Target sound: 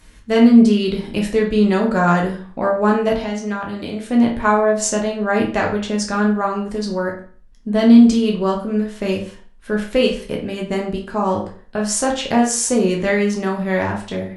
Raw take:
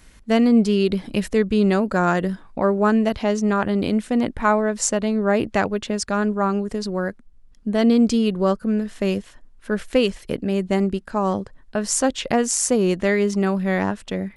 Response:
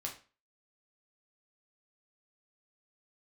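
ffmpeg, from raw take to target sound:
-filter_complex "[0:a]asettb=1/sr,asplit=3[a][b][c];[a]atrim=end=3.124[d];[b]atrim=start=3.12:end=4.06,asetpts=PTS-STARTPTS,afade=t=in:d=0.004:c=qsin,afade=t=out:st=0.936:d=0.004:c=qsin,acrossover=split=320|1300[e][f][g];[e]acompressor=threshold=-30dB:ratio=4[h];[f]acompressor=threshold=-32dB:ratio=4[i];[g]acompressor=threshold=-35dB:ratio=4[j];[h][i][j]amix=inputs=3:normalize=0[k];[c]atrim=start=4.056[l];[d][k]acrossfade=d=0.004:c1=hsin:c2=qsin[m];[m][l]acrossfade=d=0.004:c1=qsin:c2=hsin[n];[1:a]atrim=start_sample=2205,asetrate=35280,aresample=44100[o];[n][o]afir=irnorm=-1:irlink=0,volume=2dB"

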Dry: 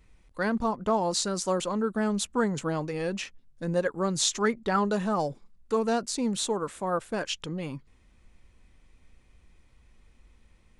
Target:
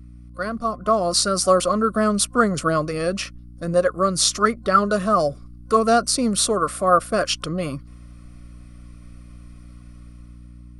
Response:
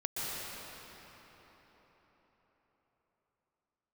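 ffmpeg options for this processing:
-af "dynaudnorm=f=170:g=11:m=11dB,superequalizer=8b=2:9b=0.316:10b=2.82:14b=2:16b=3.16,aeval=exprs='val(0)+0.0141*(sin(2*PI*60*n/s)+sin(2*PI*2*60*n/s)/2+sin(2*PI*3*60*n/s)/3+sin(2*PI*4*60*n/s)/4+sin(2*PI*5*60*n/s)/5)':c=same,volume=-3.5dB"

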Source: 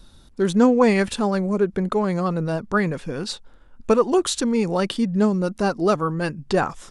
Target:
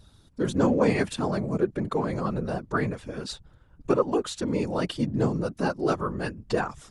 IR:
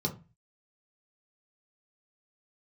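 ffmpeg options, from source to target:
-filter_complex "[0:a]asettb=1/sr,asplit=3[a][b][c];[a]atrim=end=3.914[d];[b]atrim=start=3.91:end=4.48,asetpts=PTS-STARTPTS,afade=t=in:d=0.004:c=qsin,afade=t=out:st=0.566:d=0.004:c=qsin,highshelf=f=4k:g=-8[e];[c]atrim=start=4.476[f];[d][e]acrossfade=d=0.004:c1=hsin:c2=qsin[g];[g][f]acrossfade=d=0.004:c1=qsin:c2=hsin,afftfilt=real='hypot(re,im)*cos(2*PI*random(0))':imag='hypot(re,im)*sin(2*PI*random(1))':win_size=512:overlap=0.75"

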